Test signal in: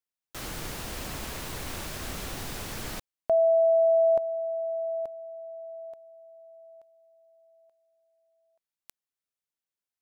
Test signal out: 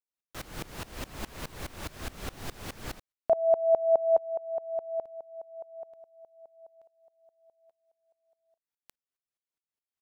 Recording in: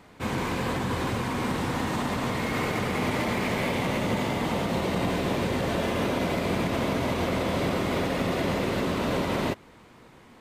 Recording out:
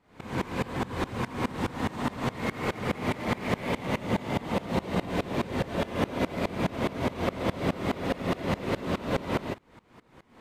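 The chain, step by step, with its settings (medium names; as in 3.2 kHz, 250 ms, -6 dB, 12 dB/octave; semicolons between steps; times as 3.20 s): treble shelf 3.9 kHz -5.5 dB; sawtooth tremolo in dB swelling 4.8 Hz, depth 22 dB; trim +4 dB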